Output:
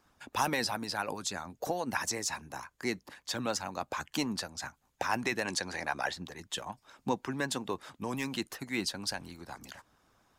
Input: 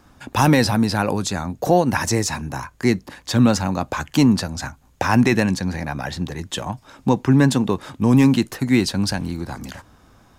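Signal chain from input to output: spectral gain 5.45–6.13, 280–11000 Hz +7 dB; low shelf 350 Hz -9.5 dB; harmonic-percussive split harmonic -10 dB; gain -8.5 dB

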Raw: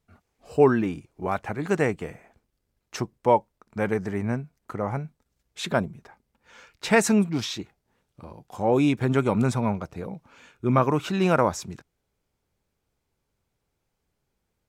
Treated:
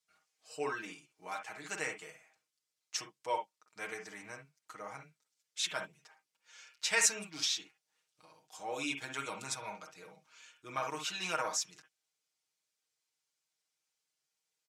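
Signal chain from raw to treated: band-pass 6200 Hz, Q 0.98; comb 6.4 ms, depth 85%; on a send: reverb, pre-delay 44 ms, DRR 5.5 dB

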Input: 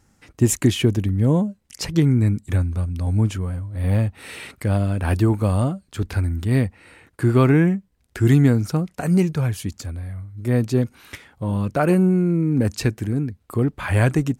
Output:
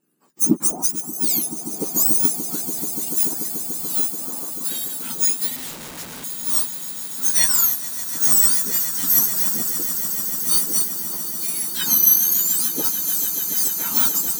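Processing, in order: spectrum mirrored in octaves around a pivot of 1500 Hz; on a send: swelling echo 0.145 s, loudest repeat 8, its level -12 dB; 5.56–6.24 on the sum: Schmitt trigger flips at -28 dBFS; high shelf 5500 Hz +10 dB; upward expander 1.5:1, over -29 dBFS; gain -1.5 dB

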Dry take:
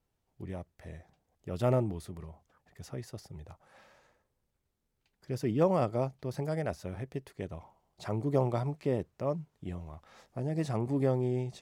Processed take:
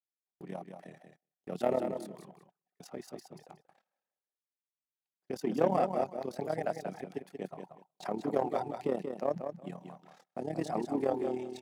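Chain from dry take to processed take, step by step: reverb removal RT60 0.83 s; sample leveller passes 1; Chebyshev high-pass 180 Hz, order 4; AM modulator 36 Hz, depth 65%; feedback echo 0.183 s, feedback 20%, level -7 dB; gate -60 dBFS, range -23 dB; bell 750 Hz +8.5 dB 0.25 oct

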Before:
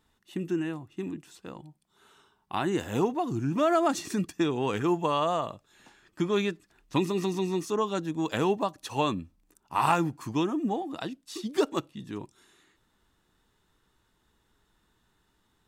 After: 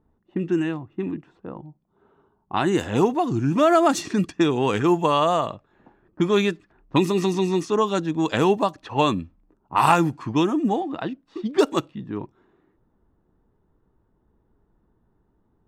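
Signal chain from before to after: low-pass opened by the level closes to 630 Hz, open at -23.5 dBFS; gain +7 dB

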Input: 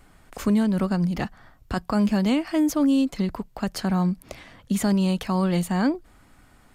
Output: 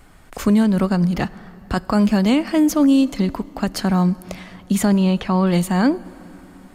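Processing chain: 4.85–5.47 LPF 3700 Hz 12 dB/oct; plate-style reverb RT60 3.9 s, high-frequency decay 0.6×, DRR 19 dB; gain +5.5 dB

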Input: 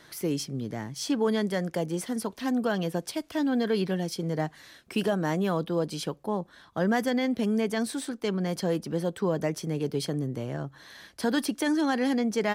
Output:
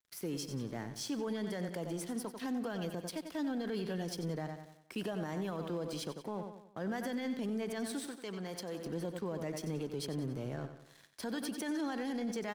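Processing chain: crossover distortion -46.5 dBFS; on a send: feedback echo 92 ms, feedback 45%, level -11 dB; on the sum: limiter -25 dBFS, peak gain reduction 10.5 dB; 8.07–8.85 low shelf 380 Hz -7.5 dB; gain -4.5 dB

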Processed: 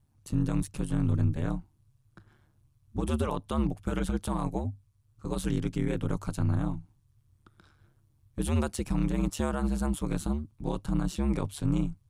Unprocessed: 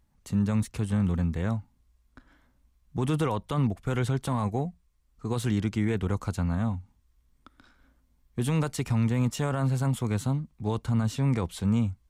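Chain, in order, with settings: ring modulator 73 Hz; thirty-one-band EQ 100 Hz +10 dB, 2000 Hz -5 dB, 10000 Hz +6 dB

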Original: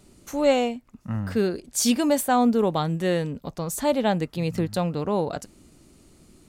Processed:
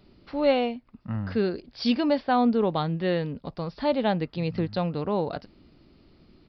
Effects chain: downsampling 11025 Hz; gain -2 dB

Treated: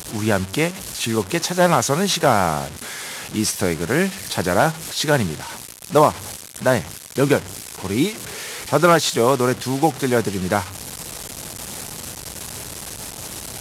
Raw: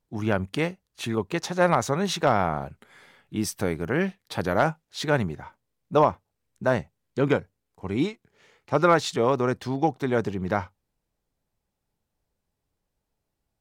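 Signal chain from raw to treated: delta modulation 64 kbps, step -34 dBFS; HPF 67 Hz; high shelf 4300 Hz +10 dB; gain +5.5 dB

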